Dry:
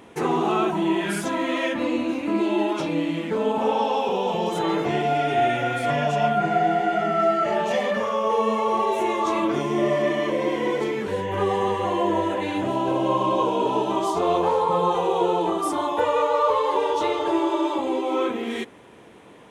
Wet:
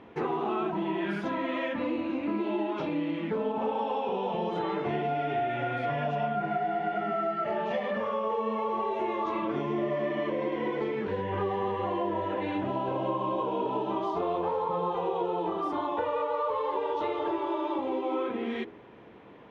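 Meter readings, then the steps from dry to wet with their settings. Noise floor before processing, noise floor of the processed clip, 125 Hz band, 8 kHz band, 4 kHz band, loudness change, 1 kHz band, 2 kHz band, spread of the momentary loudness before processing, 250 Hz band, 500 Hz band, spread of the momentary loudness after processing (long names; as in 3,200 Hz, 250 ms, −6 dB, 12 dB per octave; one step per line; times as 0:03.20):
−46 dBFS, −46 dBFS, −6.5 dB, below −25 dB, −11.5 dB, −7.5 dB, −7.5 dB, −8.0 dB, 4 LU, −7.0 dB, −7.5 dB, 2 LU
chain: hum removal 82.59 Hz, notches 9
downward compressor 4 to 1, threshold −24 dBFS, peak gain reduction 7 dB
floating-point word with a short mantissa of 4 bits
high-frequency loss of the air 290 metres
level −2 dB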